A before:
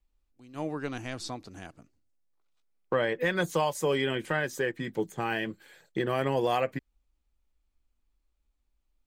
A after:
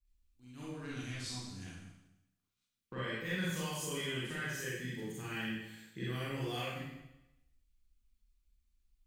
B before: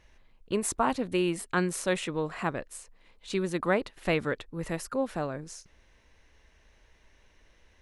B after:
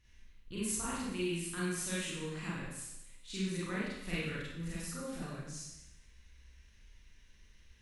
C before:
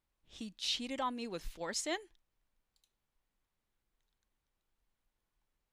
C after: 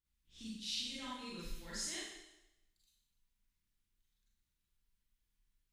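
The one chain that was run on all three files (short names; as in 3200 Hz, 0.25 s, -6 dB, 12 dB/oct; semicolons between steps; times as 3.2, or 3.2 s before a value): passive tone stack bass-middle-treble 6-0-2; in parallel at -1 dB: compressor, threshold -58 dBFS; on the sum: Schroeder reverb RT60 0.9 s, combs from 32 ms, DRR -8.5 dB; gain +1.5 dB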